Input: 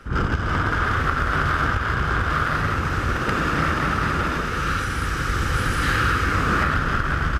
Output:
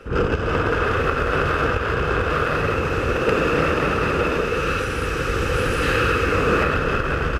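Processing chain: small resonant body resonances 470/2600 Hz, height 15 dB, ringing for 20 ms; gain -1.5 dB

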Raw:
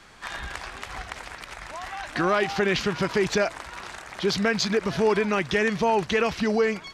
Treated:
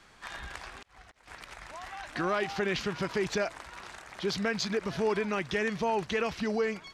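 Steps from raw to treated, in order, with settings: 0.65–1.28 auto swell 0.573 s; gain -7 dB

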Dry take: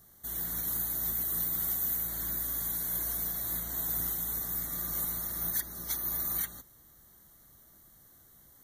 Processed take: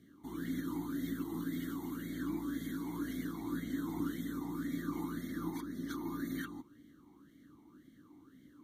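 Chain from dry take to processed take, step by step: tilt shelf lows +5 dB, about 850 Hz; vowel sweep i-u 1.9 Hz; gain +16.5 dB

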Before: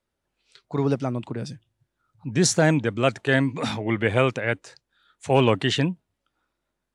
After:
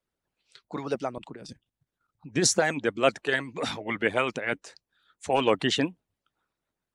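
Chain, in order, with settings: 1.18–2.34 level quantiser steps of 9 dB; harmonic-percussive split harmonic -18 dB

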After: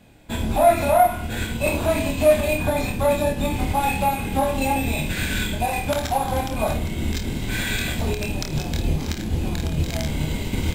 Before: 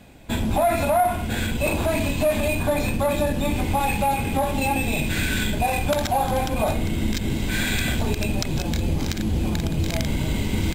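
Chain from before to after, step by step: on a send: flutter echo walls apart 4.5 m, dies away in 0.29 s; on the sum: upward expander 1.5:1, over -28 dBFS; gain +2.5 dB

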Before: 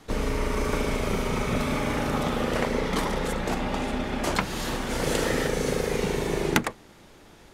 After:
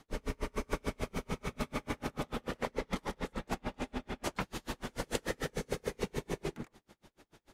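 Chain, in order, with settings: dB-linear tremolo 6.8 Hz, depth 38 dB; gain -5 dB

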